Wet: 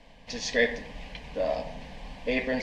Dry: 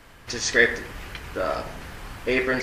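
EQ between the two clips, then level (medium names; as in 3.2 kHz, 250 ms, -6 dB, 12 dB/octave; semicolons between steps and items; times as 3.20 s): low-pass 4 kHz 12 dB/octave; static phaser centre 360 Hz, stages 6; 0.0 dB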